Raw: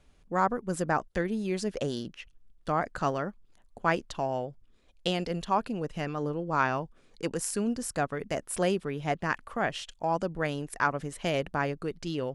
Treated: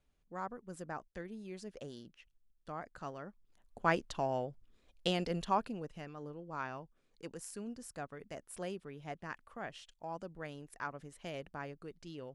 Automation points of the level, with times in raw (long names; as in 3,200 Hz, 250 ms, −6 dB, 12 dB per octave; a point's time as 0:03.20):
0:03.16 −15.5 dB
0:03.79 −4 dB
0:05.50 −4 dB
0:06.07 −14.5 dB